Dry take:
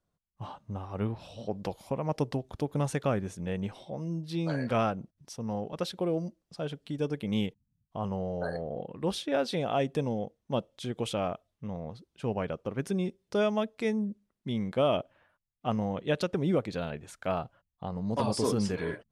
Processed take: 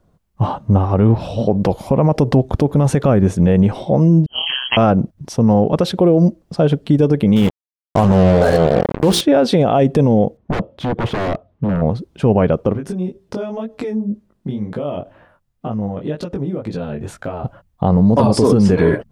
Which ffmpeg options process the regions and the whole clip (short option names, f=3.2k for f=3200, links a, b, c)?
-filter_complex "[0:a]asettb=1/sr,asplit=3[a][b][c];[a]atrim=end=4.264[d];[b]atrim=start=4.26:end=4.77,asetpts=PTS-STARTPTS,afade=t=in:d=0.004:c=qsin,afade=t=out:st=0.506:d=0.004:c=qsin,agate=range=-33dB:threshold=-29dB:ratio=3:release=100:detection=peak,tremolo=f=130:d=0.974,lowpass=f=2.8k:t=q:w=0.5098,lowpass=f=2.8k:t=q:w=0.6013,lowpass=f=2.8k:t=q:w=0.9,lowpass=f=2.8k:t=q:w=2.563,afreqshift=-3300[e];[c]atrim=start=4.766[f];[d][e]acrossfade=d=0.004:c1=hsin:c2=qsin[g];[g][f]acrossfade=d=0.004:c1=qsin:c2=hsin,asettb=1/sr,asplit=3[h][i][j];[h]atrim=end=7.364[k];[i]atrim=start=7.36:end=9.21,asetpts=PTS-STARTPTS,afade=t=in:d=0.004:c=qsin,afade=t=out:st=1.846:d=0.004:c=qsin,highshelf=f=3.6k:g=10,bandreject=f=57.49:t=h:w=4,bandreject=f=114.98:t=h:w=4,bandreject=f=172.47:t=h:w=4,bandreject=f=229.96:t=h:w=4,bandreject=f=287.45:t=h:w=4,bandreject=f=344.94:t=h:w=4,bandreject=f=402.43:t=h:w=4,bandreject=f=459.92:t=h:w=4,acrusher=bits=5:mix=0:aa=0.5[l];[j]atrim=start=9.206[m];[k][l]acrossfade=d=0.004:c1=hsin:c2=qsin[n];[n][m]acrossfade=d=0.004:c1=qsin:c2=hsin,asettb=1/sr,asplit=3[o][p][q];[o]atrim=end=10.374[r];[p]atrim=start=10.37:end=11.82,asetpts=PTS-STARTPTS,afade=t=in:d=0.004:c=qsin,afade=t=out:st=1.446:d=0.004:c=qsin,highpass=49,aeval=exprs='0.0168*(abs(mod(val(0)/0.0168+3,4)-2)-1)':c=same,adynamicsmooth=sensitivity=7.5:basefreq=2.3k[s];[q]atrim=start=11.816[t];[r][s]acrossfade=d=0.004:c1=hsin:c2=qsin[u];[u][t]acrossfade=d=0.004:c1=qsin:c2=hsin,asettb=1/sr,asplit=3[v][w][x];[v]atrim=end=12.734[y];[w]atrim=start=12.73:end=17.44,asetpts=PTS-STARTPTS,afade=t=in:d=0.004:c=qsin,afade=t=out:st=4.706:d=0.004:c=qsin,bandreject=f=2.2k:w=22,acompressor=threshold=-40dB:ratio=12:attack=3.2:release=140:knee=1:detection=peak,flanger=delay=17.5:depth=5:speed=2[z];[x]atrim=start=17.436[aa];[y][z]acrossfade=d=0.004:c1=hsin:c2=qsin[ab];[ab][aa]acrossfade=d=0.004:c1=qsin:c2=hsin,tiltshelf=f=1.3k:g=6.5,alimiter=level_in=21.5dB:limit=-1dB:release=50:level=0:latency=1,volume=-3dB"